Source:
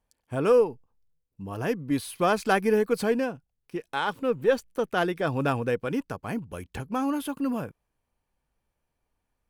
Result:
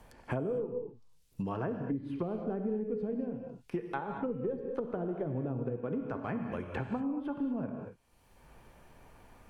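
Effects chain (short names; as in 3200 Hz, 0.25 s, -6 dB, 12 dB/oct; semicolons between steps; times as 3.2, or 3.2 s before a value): treble ducked by the level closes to 360 Hz, closed at -23 dBFS; non-linear reverb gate 0.26 s flat, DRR 4.5 dB; three-band squash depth 100%; gain -6.5 dB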